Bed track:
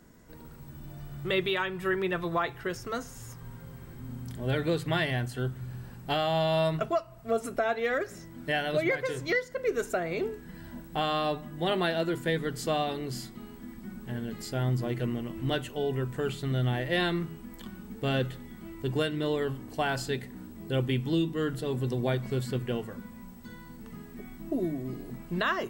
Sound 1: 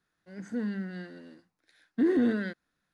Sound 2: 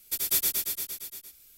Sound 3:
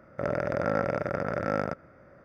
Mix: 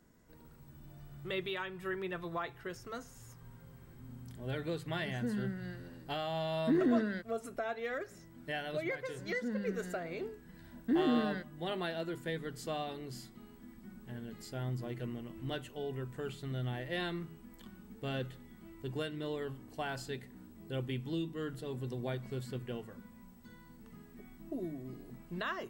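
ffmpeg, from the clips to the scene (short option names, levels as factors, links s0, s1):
-filter_complex "[1:a]asplit=2[s0][s1];[0:a]volume=0.335[s2];[s0]atrim=end=2.93,asetpts=PTS-STARTPTS,volume=0.596,afade=t=in:d=0.004:c=hsin,afade=t=out:st=2.926:d=0.004:c=hsin,adelay=206829S[s3];[s1]atrim=end=2.93,asetpts=PTS-STARTPTS,volume=0.531,afade=t=in:d=0.004:c=hsin,afade=t=out:st=2.926:d=0.004:c=hsin,adelay=392490S[s4];[s2][s3][s4]amix=inputs=3:normalize=0"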